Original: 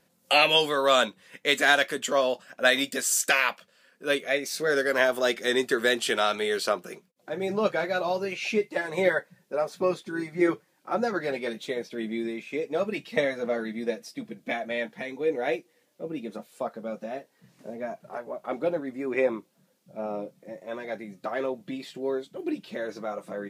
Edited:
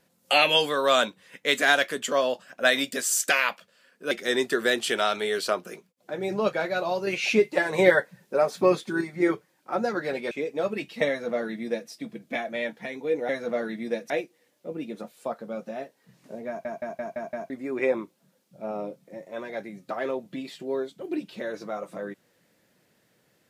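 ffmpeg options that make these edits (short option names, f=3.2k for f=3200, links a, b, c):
-filter_complex "[0:a]asplit=13[a][b][c][d][e][f][g][h][i][j][k][l][m];[a]atrim=end=4.112[n];[b]atrim=start=5.298:end=8.262[o];[c]atrim=start=8.258:end=10.202,asetpts=PTS-STARTPTS,volume=5dB[p];[d]atrim=start=10.198:end=11.502[q];[e]atrim=start=12.468:end=15.452[r];[f]atrim=start=13.248:end=14.062[s];[g]atrim=start=15.448:end=18.002[t];[h]atrim=start=17.828:end=18.002[u];[i]atrim=start=17.828:end=18.002[v];[j]atrim=start=17.828:end=18.002[w];[k]atrim=start=17.828:end=18.002[x];[l]atrim=start=17.828:end=18.002[y];[m]atrim=start=18.848[z];[n][o]acrossfade=d=0.004:c1=hsin:c2=hsin[aa];[aa][p]acrossfade=d=0.004:c1=hsin:c2=hsin[ab];[ab][q]acrossfade=d=0.004:c1=hsin:c2=hsin[ac];[ac][r]acrossfade=d=0.004:c1=hsin:c2=hsin[ad];[ad][s]acrossfade=d=0.004:c1=hsin:c2=hsin[ae];[ae][t]acrossfade=d=0.004:c1=hsin:c2=hsin[af];[af][u]acrossfade=d=0.004:c1=hsin:c2=hsin[ag];[ag][v]acrossfade=d=0.004:c1=hsin:c2=hsin[ah];[ah][w]acrossfade=d=0.004:c1=hsin:c2=hsin[ai];[ai][x]acrossfade=d=0.004:c1=hsin:c2=hsin[aj];[aj][y]acrossfade=d=0.004:c1=hsin:c2=hsin[ak];[ak][z]acrossfade=d=0.004:c1=hsin:c2=hsin"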